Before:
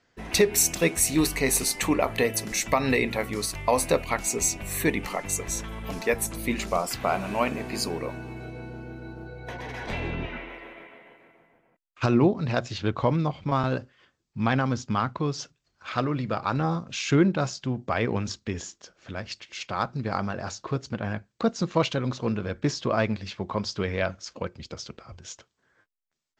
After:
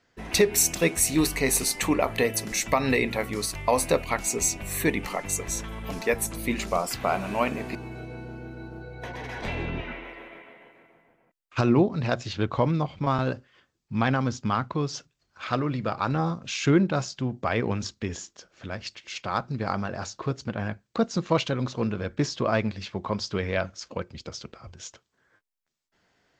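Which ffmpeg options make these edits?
-filter_complex "[0:a]asplit=2[s0][s1];[s0]atrim=end=7.752[s2];[s1]atrim=start=8.198[s3];[s2][s3]acrossfade=d=0.004:c1=hsin:c2=hsin"

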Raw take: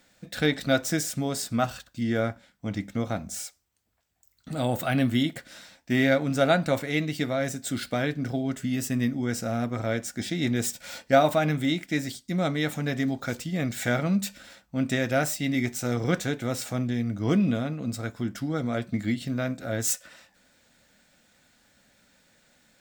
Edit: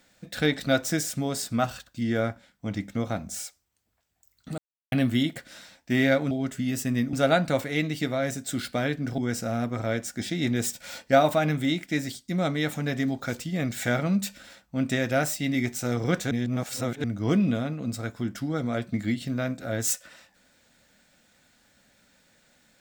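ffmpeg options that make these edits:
-filter_complex "[0:a]asplit=8[s0][s1][s2][s3][s4][s5][s6][s7];[s0]atrim=end=4.58,asetpts=PTS-STARTPTS,afade=t=out:st=4.576:d=0.004:c=hsin[s8];[s1]atrim=start=4.58:end=4.92,asetpts=PTS-STARTPTS,volume=0[s9];[s2]atrim=start=4.92:end=6.312,asetpts=PTS-STARTPTS,afade=t=in:d=0.004:c=hsin[s10];[s3]atrim=start=8.358:end=9.182[s11];[s4]atrim=start=6.308:end=8.362[s12];[s5]atrim=start=9.178:end=16.312[s13];[s6]atrim=start=16.308:end=17.042,asetpts=PTS-STARTPTS,areverse[s14];[s7]atrim=start=17.038[s15];[s8][s9][s10]concat=n=3:v=0:a=1[s16];[s16][s11]acrossfade=d=0.004:c1=hsin:c2=hsin[s17];[s17][s12]acrossfade=d=0.004:c1=hsin:c2=hsin[s18];[s18][s13]acrossfade=d=0.004:c1=hsin:c2=hsin[s19];[s19][s14]acrossfade=d=0.004:c1=hsin:c2=hsin[s20];[s20][s15]acrossfade=d=0.004:c1=hsin:c2=hsin"

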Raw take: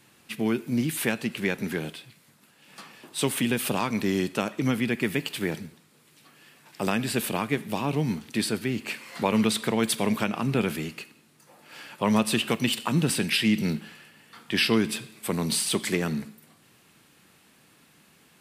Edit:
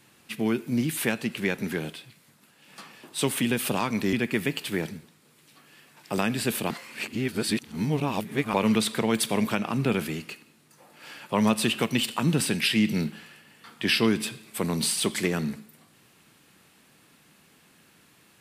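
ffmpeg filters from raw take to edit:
-filter_complex "[0:a]asplit=4[s0][s1][s2][s3];[s0]atrim=end=4.132[s4];[s1]atrim=start=4.818:end=7.392[s5];[s2]atrim=start=7.388:end=9.232,asetpts=PTS-STARTPTS,areverse[s6];[s3]atrim=start=9.228[s7];[s4][s5]acrossfade=d=0.004:c1=hsin:c2=hsin[s8];[s8][s6]acrossfade=d=0.004:c1=hsin:c2=hsin[s9];[s9][s7]acrossfade=d=0.004:c1=hsin:c2=hsin"

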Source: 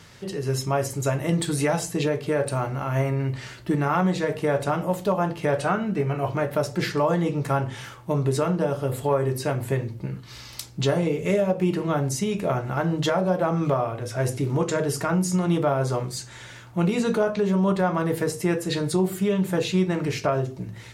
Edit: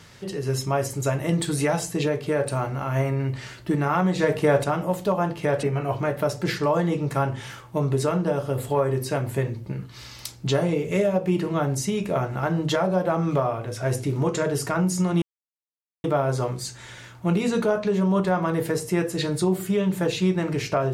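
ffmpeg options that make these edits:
-filter_complex "[0:a]asplit=5[s0][s1][s2][s3][s4];[s0]atrim=end=4.192[s5];[s1]atrim=start=4.188:end=4.642,asetpts=PTS-STARTPTS,volume=1.58[s6];[s2]atrim=start=4.638:end=5.632[s7];[s3]atrim=start=5.968:end=15.56,asetpts=PTS-STARTPTS,afade=t=out:st=9.588:d=0.004:c=hsin,apad=pad_dur=0.82[s8];[s4]atrim=start=15.56,asetpts=PTS-STARTPTS,afade=t=in:d=0.004:c=hsin[s9];[s5][s6]acrossfade=d=0.004:c1=hsin:c2=hsin[s10];[s10][s7]acrossfade=d=0.004:c1=hsin:c2=hsin[s11];[s8][s9]concat=n=2:v=0:a=1[s12];[s11][s12]acrossfade=d=0.004:c1=hsin:c2=hsin"

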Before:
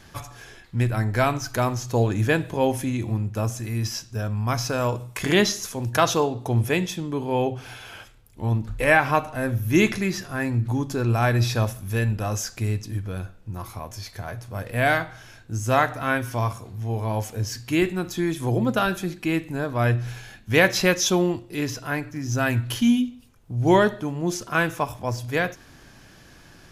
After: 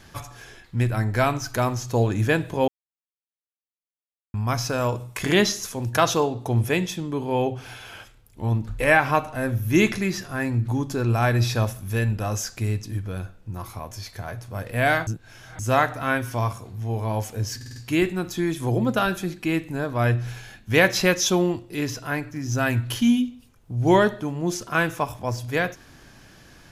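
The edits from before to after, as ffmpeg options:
-filter_complex "[0:a]asplit=9[s0][s1][s2][s3][s4][s5][s6][s7][s8];[s0]atrim=end=2.68,asetpts=PTS-STARTPTS,afade=t=out:st=2.676:d=0.004:c=hsin[s9];[s1]atrim=start=2.68:end=4.34,asetpts=PTS-STARTPTS,volume=0[s10];[s2]atrim=start=4.34:end=15.072,asetpts=PTS-STARTPTS,afade=t=in:d=0.004:c=hsin[s11];[s3]atrim=start=15.068:end=15.592,asetpts=PTS-STARTPTS,areverse[s12];[s4]atrim=start=15.588:end=17.612[s13];[s5]atrim=start=17.558:end=17.612[s14];[s6]atrim=start=17.558:end=17.612[s15];[s7]atrim=start=17.558:end=17.612[s16];[s8]atrim=start=17.558[s17];[s9][s10][s11]concat=n=3:v=0:a=1[s18];[s18][s12]acrossfade=d=0.004:c1=hsin:c2=hsin[s19];[s19][s13]acrossfade=d=0.004:c1=hsin:c2=hsin[s20];[s20][s14]acrossfade=d=0.004:c1=hsin:c2=hsin[s21];[s21][s15]acrossfade=d=0.004:c1=hsin:c2=hsin[s22];[s22][s16]acrossfade=d=0.004:c1=hsin:c2=hsin[s23];[s23][s17]acrossfade=d=0.004:c1=hsin:c2=hsin"

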